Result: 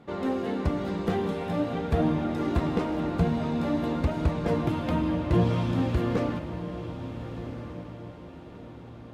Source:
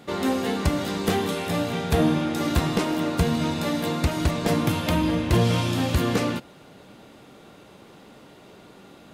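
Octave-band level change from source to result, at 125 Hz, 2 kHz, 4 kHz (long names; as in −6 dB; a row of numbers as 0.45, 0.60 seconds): −2.5, −8.0, −12.5 decibels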